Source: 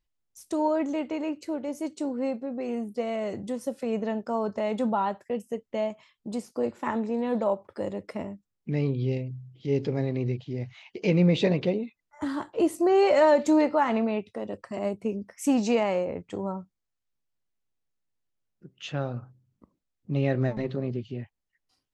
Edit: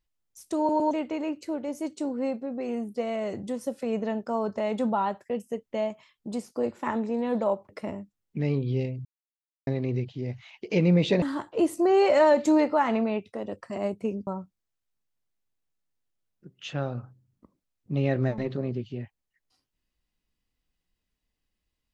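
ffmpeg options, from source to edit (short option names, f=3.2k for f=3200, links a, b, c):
-filter_complex "[0:a]asplit=9[a][b][c][d][e][f][g][h][i];[a]atrim=end=0.692[j];[b]atrim=start=0.578:end=0.692[k];[c]atrim=start=0.578:end=0.692[l];[d]atrim=start=0.908:end=7.692[m];[e]atrim=start=8.008:end=9.37,asetpts=PTS-STARTPTS,afade=t=out:st=1.358:d=0.004:c=hsin[n];[f]atrim=start=9.37:end=9.99,asetpts=PTS-STARTPTS,volume=0[o];[g]atrim=start=9.99:end=11.542,asetpts=PTS-STARTPTS,afade=t=in:d=0.004:c=hsin[p];[h]atrim=start=12.228:end=15.282[q];[i]atrim=start=16.458[r];[j][k]acrossfade=d=0.004:c1=hsin:c2=hsin[s];[s][l]acrossfade=d=0.004:c1=hsin:c2=hsin[t];[t][m]acrossfade=d=0.004:c1=hsin:c2=hsin[u];[n][o][p]concat=n=3:v=0:a=1[v];[u][v]acrossfade=d=0.004:c1=hsin:c2=hsin[w];[w][q]acrossfade=d=0.004:c1=hsin:c2=hsin[x];[x][r]acrossfade=d=0.004:c1=hsin:c2=hsin"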